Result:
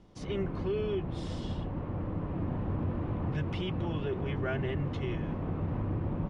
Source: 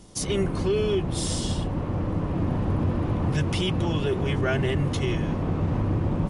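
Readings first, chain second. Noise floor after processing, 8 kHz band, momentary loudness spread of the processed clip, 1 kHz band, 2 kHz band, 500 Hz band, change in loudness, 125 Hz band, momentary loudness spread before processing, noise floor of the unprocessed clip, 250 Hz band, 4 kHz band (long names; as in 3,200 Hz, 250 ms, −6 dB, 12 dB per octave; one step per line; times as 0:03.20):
−39 dBFS, below −25 dB, 4 LU, −8.0 dB, −9.0 dB, −8.0 dB, −8.5 dB, −8.0 dB, 4 LU, −30 dBFS, −8.0 dB, −13.5 dB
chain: low-pass filter 2,700 Hz 12 dB per octave
level −8 dB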